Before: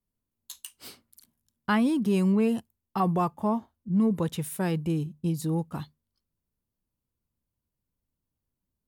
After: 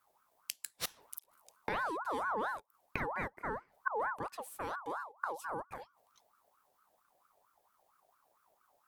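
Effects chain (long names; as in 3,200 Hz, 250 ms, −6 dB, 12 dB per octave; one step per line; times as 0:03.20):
gate with flip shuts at −34 dBFS, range −24 dB
ring modulator whose carrier an LFO sweeps 970 Hz, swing 35%, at 4.4 Hz
level +14 dB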